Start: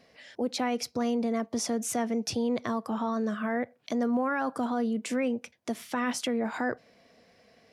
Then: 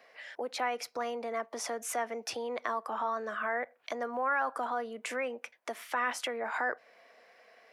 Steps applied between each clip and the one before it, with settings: three-band isolator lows -16 dB, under 400 Hz, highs -21 dB, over 2.1 kHz; in parallel at -1 dB: compression, threshold -41 dBFS, peak gain reduction 13 dB; on the sum: tilt EQ +4 dB/octave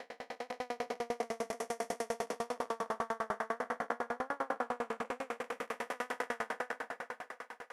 spectral blur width 864 ms; thinning echo 345 ms, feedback 82%, high-pass 180 Hz, level -10.5 dB; sawtooth tremolo in dB decaying 10 Hz, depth 36 dB; trim +10 dB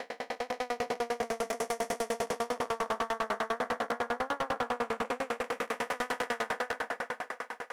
overload inside the chain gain 34 dB; trim +8 dB

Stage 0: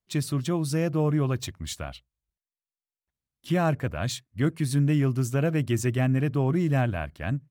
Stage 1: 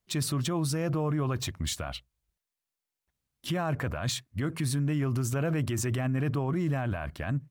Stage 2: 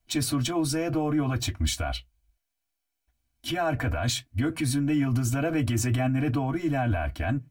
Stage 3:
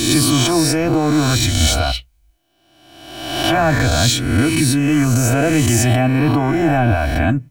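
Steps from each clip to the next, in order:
dynamic bell 1.1 kHz, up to +6 dB, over -43 dBFS, Q 1.1; in parallel at +0.5 dB: compressor with a negative ratio -30 dBFS; on the sum: peak limiter -18.5 dBFS, peak gain reduction 11 dB; trim -3.5 dB
reverberation RT60 0.10 s, pre-delay 3 ms, DRR 0 dB
reverse spectral sustain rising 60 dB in 1.17 s; trim +9 dB

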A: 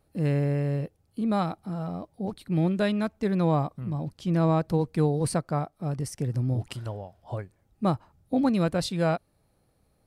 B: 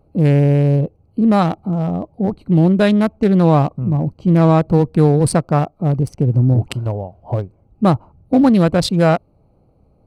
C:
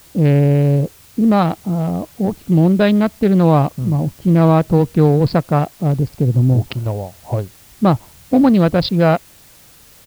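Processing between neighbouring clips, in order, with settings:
local Wiener filter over 25 samples; in parallel at -1.5 dB: peak limiter -21 dBFS, peak gain reduction 8.5 dB; on the sum: trim +8.5 dB
resampled via 11.025 kHz; in parallel at -7 dB: word length cut 6-bit, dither triangular; on the sum: trim -3 dB

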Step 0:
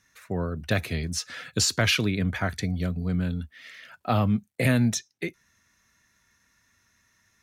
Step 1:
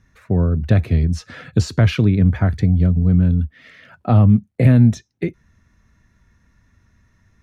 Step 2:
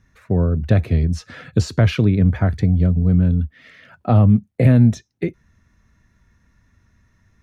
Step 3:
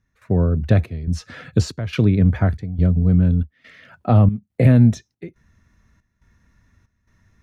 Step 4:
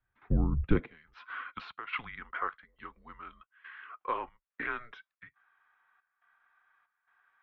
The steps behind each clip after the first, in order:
tilt EQ -4 dB/octave; in parallel at -1 dB: compression, threshold -23 dBFS, peak gain reduction 14 dB; on the sum: trim -1 dB
dynamic bell 530 Hz, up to +3 dB, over -31 dBFS, Q 1.4; trim -1 dB
trance gate "..xxxxxx" 140 bpm -12 dB
high-pass sweep 63 Hz -> 1.4 kHz, 0.47–0.99 s; mistuned SSB -230 Hz 150–3400 Hz; trim -6.5 dB

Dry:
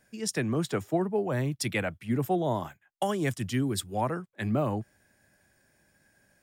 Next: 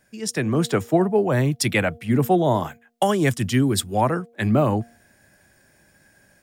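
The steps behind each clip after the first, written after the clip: de-hum 234.5 Hz, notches 3; level rider gain up to 5.5 dB; trim +3.5 dB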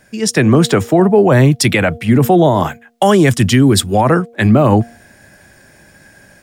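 treble shelf 10 kHz -6 dB; loudness maximiser +14 dB; trim -1 dB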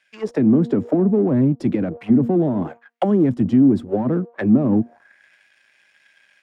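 partial rectifier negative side -7 dB; waveshaping leveller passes 1; auto-wah 250–2700 Hz, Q 2.4, down, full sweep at -8.5 dBFS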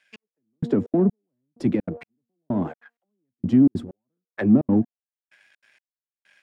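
trance gate "xx......xxx." 192 bpm -60 dB; trim -1.5 dB

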